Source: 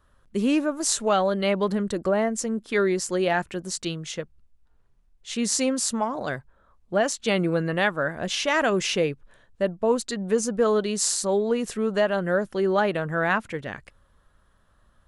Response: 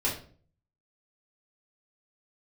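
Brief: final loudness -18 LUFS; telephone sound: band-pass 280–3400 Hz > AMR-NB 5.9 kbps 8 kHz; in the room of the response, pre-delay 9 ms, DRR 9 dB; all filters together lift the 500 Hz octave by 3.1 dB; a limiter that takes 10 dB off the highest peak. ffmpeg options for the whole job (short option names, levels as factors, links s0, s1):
-filter_complex "[0:a]equalizer=f=500:t=o:g=4.5,alimiter=limit=0.178:level=0:latency=1,asplit=2[s0][s1];[1:a]atrim=start_sample=2205,adelay=9[s2];[s1][s2]afir=irnorm=-1:irlink=0,volume=0.133[s3];[s0][s3]amix=inputs=2:normalize=0,highpass=280,lowpass=3400,volume=2.66" -ar 8000 -c:a libopencore_amrnb -b:a 5900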